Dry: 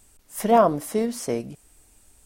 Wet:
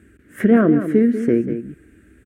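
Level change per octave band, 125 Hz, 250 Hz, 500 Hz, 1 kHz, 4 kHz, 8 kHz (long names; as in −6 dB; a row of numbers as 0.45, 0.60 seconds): +9.5 dB, +12.0 dB, +2.5 dB, −9.0 dB, can't be measured, below −10 dB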